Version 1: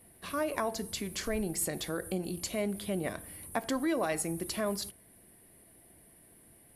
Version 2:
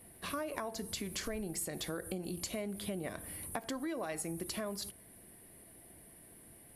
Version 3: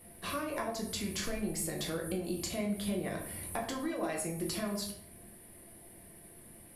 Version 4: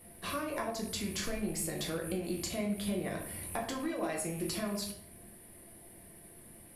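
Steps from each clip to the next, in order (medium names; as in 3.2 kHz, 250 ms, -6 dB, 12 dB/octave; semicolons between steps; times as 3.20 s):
compression, threshold -38 dBFS, peak gain reduction 11.5 dB; trim +2 dB
simulated room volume 88 m³, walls mixed, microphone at 0.83 m
rattle on loud lows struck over -43 dBFS, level -45 dBFS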